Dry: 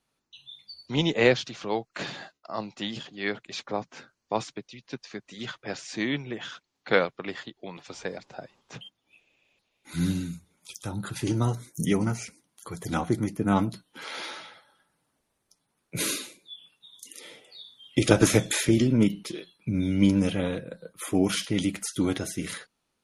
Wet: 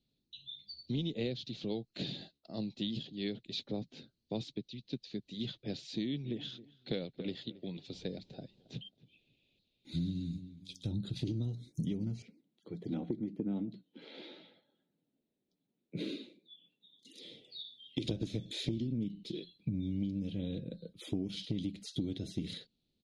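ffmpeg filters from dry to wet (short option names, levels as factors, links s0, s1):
-filter_complex "[0:a]asettb=1/sr,asplit=3[s0][s1][s2];[s0]atrim=end=5.864[s3];[s1]atrim=start=5.86:end=10.94,asetpts=PTS-STARTPTS,afade=t=in:d=0.004:c=qsin,afade=t=out:st=5.076:d=0.004:c=qsin,asplit=2[s4][s5];[s5]adelay=272,lowpass=f=2000:p=1,volume=0.1,asplit=2[s6][s7];[s7]adelay=272,lowpass=f=2000:p=1,volume=0.23[s8];[s4][s6][s8]amix=inputs=3:normalize=0,atrim=end_sample=224028[s9];[s2]atrim=start=10.936[s10];[s3][s9]acrossfade=d=0.004:c1=hsin:c2=qsin[s11];[s11][s10]acrossfade=d=0.004:c1=qsin:c2=hsin,asettb=1/sr,asplit=3[s12][s13][s14];[s12]atrim=end=12.224[s15];[s13]atrim=start=12.22:end=17.05,asetpts=PTS-STARTPTS,afade=t=in:d=0.004:c=qsin,afade=t=out:st=4.826:d=0.004:c=qsin,acrossover=split=180 2500:gain=0.0794 1 0.1[s16][s17][s18];[s16][s17][s18]amix=inputs=3:normalize=0[s19];[s14]atrim=start=17.046[s20];[s15][s19]acrossfade=d=0.004:c1=hsin:c2=qsin[s21];[s21][s20]acrossfade=d=0.004:c1=qsin:c2=hsin,asettb=1/sr,asplit=3[s22][s23][s24];[s22]atrim=end=17.604[s25];[s23]atrim=start=17.6:end=18.04,asetpts=PTS-STARTPTS,afade=t=in:d=0.004:c=qsin,afade=t=out:st=0.436:d=0.004:c=qsin,highpass=f=330:p=1[s26];[s24]atrim=start=18.036[s27];[s25][s26]acrossfade=d=0.004:c1=hsin:c2=qsin[s28];[s28][s27]acrossfade=d=0.004:c1=qsin:c2=hsin,firequalizer=gain_entry='entry(220,0);entry(1100,-30);entry(2400,-14);entry(3900,0);entry(5600,-15);entry(11000,-27)':delay=0.05:min_phase=1,acompressor=threshold=0.02:ratio=12,volume=1.26"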